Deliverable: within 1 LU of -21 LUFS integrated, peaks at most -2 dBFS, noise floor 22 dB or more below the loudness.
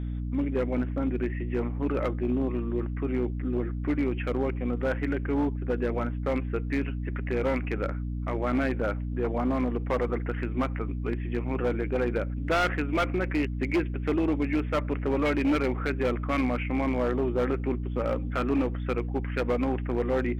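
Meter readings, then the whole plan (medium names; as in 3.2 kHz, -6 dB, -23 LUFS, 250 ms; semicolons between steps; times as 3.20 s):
clipped samples 2.2%; clipping level -20.0 dBFS; hum 60 Hz; highest harmonic 300 Hz; hum level -29 dBFS; loudness -28.5 LUFS; peak level -20.0 dBFS; loudness target -21.0 LUFS
-> clip repair -20 dBFS; de-hum 60 Hz, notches 5; trim +7.5 dB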